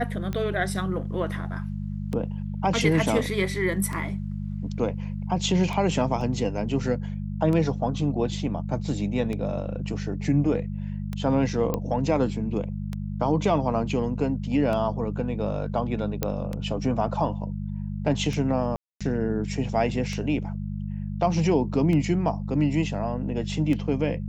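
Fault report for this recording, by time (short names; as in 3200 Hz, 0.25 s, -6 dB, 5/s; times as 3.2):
hum 50 Hz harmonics 4 -31 dBFS
tick 33 1/3 rpm -18 dBFS
6.21 gap 2.5 ms
11.74 pop -13 dBFS
16.23 pop -9 dBFS
18.76–19.01 gap 0.246 s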